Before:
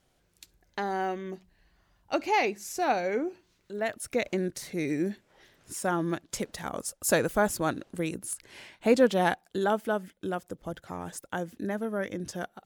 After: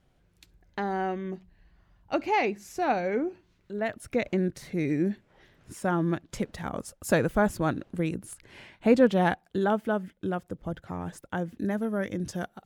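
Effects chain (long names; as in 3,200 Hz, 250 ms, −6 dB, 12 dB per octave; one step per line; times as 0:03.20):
bass and treble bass +7 dB, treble −9 dB, from 0:11.58 treble −1 dB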